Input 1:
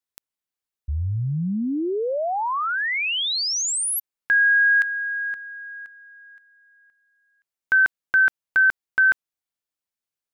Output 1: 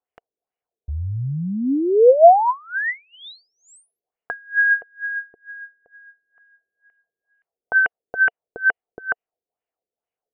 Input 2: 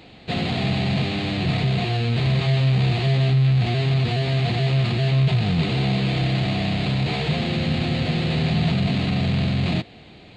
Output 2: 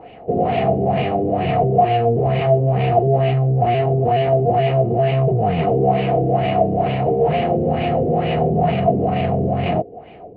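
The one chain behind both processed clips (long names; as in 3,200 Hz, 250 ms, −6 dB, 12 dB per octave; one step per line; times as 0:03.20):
hollow resonant body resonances 460/700/2,900 Hz, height 11 dB, ringing for 25 ms
auto-filter low-pass sine 2.2 Hz 380–2,400 Hz
graphic EQ with 15 bands 630 Hz +5 dB, 1,600 Hz −4 dB, 4,000 Hz −9 dB
level −1 dB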